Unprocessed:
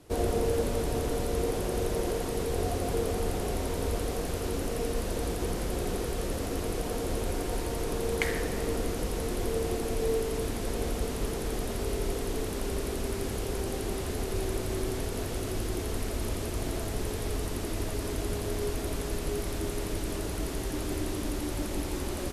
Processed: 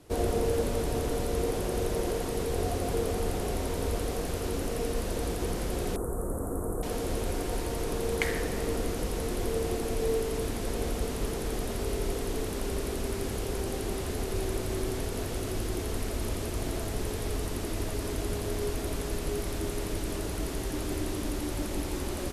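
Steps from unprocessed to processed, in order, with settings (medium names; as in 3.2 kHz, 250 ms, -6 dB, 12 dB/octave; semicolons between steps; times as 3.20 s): 5.96–6.83 s: Chebyshev band-stop 1.3–8.4 kHz, order 3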